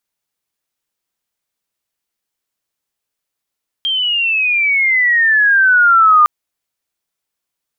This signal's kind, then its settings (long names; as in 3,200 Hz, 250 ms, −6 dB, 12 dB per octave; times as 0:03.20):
glide logarithmic 3,200 Hz → 1,200 Hz −14 dBFS → −5 dBFS 2.41 s